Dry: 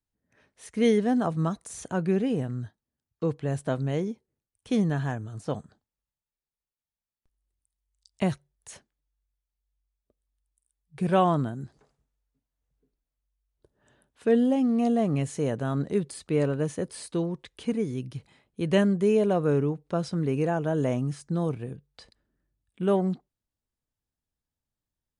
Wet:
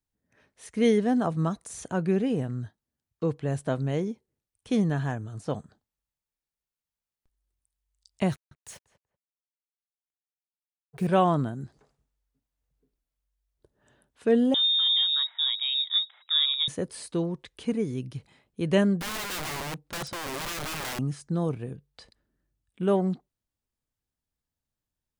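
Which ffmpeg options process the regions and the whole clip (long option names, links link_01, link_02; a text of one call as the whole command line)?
ffmpeg -i in.wav -filter_complex "[0:a]asettb=1/sr,asplit=3[link_01][link_02][link_03];[link_01]atrim=end=8.324[link_04];[link_02]atrim=start=8.32:end=11.07,asetpts=PTS-STARTPTS,afade=type=in:duration=0.004:curve=qsin,afade=type=out:start_time=2.746:duration=0.004:curve=qsin,acrusher=bits=7:mix=0:aa=0.5,asplit=2[link_05][link_06];[link_06]adelay=191,lowpass=frequency=1300:poles=1,volume=-13.5dB,asplit=2[link_07][link_08];[link_08]adelay=191,lowpass=frequency=1300:poles=1,volume=0.2[link_09];[link_05][link_07][link_09]amix=inputs=3:normalize=0,atrim=end_sample=121275[link_10];[link_03]atrim=start=11.066[link_11];[link_04][link_10]acrossfade=duration=0.004:curve1=hsin:curve2=qsin[link_12];[link_12][link_11]acrossfade=duration=0.004:curve1=qsin:curve2=hsin,asettb=1/sr,asplit=3[link_13][link_14][link_15];[link_13]atrim=end=14.544[link_16];[link_14]atrim=start=14.54:end=16.68,asetpts=PTS-STARTPTS,afade=type=in:duration=0.004:curve=qsin,afade=type=out:start_time=2.136:duration=0.004:curve=qsin,equalizer=frequency=1200:width=3.4:gain=-9,lowpass=frequency=3300:width_type=q:width=0.5098,lowpass=frequency=3300:width_type=q:width=0.6013,lowpass=frequency=3300:width_type=q:width=0.9,lowpass=frequency=3300:width_type=q:width=2.563,afreqshift=-3900,highpass=frequency=780:width=0.5412,highpass=frequency=780:width=1.3066[link_17];[link_15]atrim=start=16.676[link_18];[link_16][link_17]acrossfade=duration=0.004:curve1=hsin:curve2=qsin[link_19];[link_19][link_18]acrossfade=duration=0.004:curve1=qsin:curve2=hsin,asettb=1/sr,asplit=3[link_20][link_21][link_22];[link_20]atrim=end=19.004[link_23];[link_21]atrim=start=19:end=20.99,asetpts=PTS-STARTPTS,afade=type=in:duration=0.004:curve=qsin,afade=type=out:start_time=1.986:duration=0.004:curve=qsin,bandreject=frequency=430:width=5.6,aeval=exprs='(mod(26.6*val(0)+1,2)-1)/26.6':channel_layout=same[link_24];[link_22]atrim=start=20.986[link_25];[link_23][link_24]acrossfade=duration=0.004:curve1=hsin:curve2=qsin[link_26];[link_26][link_25]acrossfade=duration=0.004:curve1=qsin:curve2=hsin" out.wav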